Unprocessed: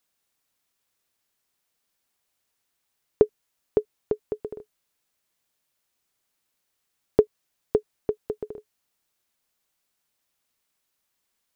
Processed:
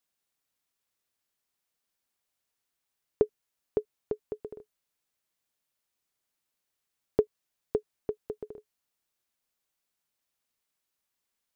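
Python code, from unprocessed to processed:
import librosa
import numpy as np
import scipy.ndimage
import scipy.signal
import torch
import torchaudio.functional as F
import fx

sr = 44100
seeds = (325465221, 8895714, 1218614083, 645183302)

y = F.gain(torch.from_numpy(x), -6.5).numpy()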